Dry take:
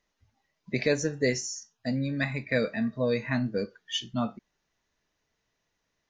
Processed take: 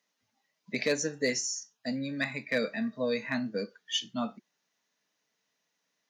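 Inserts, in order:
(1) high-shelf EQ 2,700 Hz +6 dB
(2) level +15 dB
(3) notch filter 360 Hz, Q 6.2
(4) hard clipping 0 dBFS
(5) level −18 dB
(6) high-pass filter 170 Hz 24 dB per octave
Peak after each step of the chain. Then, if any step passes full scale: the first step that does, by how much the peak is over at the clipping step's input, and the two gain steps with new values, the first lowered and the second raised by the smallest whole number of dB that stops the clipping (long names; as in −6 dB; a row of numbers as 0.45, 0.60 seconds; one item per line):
−9.5, +5.5, +5.0, 0.0, −18.0, −15.0 dBFS
step 2, 5.0 dB
step 2 +10 dB, step 5 −13 dB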